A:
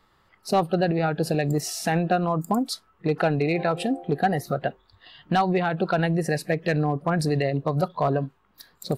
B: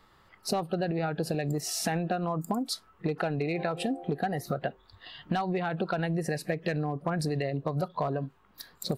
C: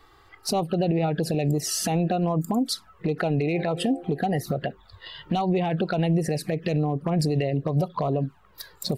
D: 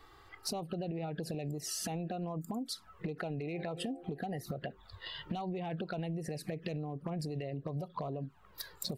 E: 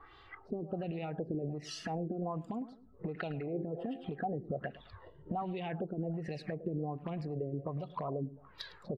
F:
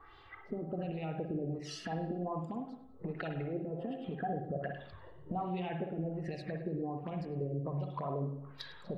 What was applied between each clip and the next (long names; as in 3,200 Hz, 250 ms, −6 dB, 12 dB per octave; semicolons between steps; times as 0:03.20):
downward compressor 6 to 1, threshold −29 dBFS, peak gain reduction 12 dB; level +2 dB
flanger swept by the level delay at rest 2.7 ms, full sweep at −25.5 dBFS; brickwall limiter −24 dBFS, peak gain reduction 6.5 dB; level +8.5 dB
downward compressor 10 to 1, threshold −32 dBFS, peak gain reduction 13.5 dB; level −3 dB
repeating echo 107 ms, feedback 31%, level −15.5 dB; auto-filter low-pass sine 1.3 Hz 340–3,500 Hz; level −1 dB
convolution reverb RT60 0.75 s, pre-delay 49 ms, DRR 4 dB; level −1.5 dB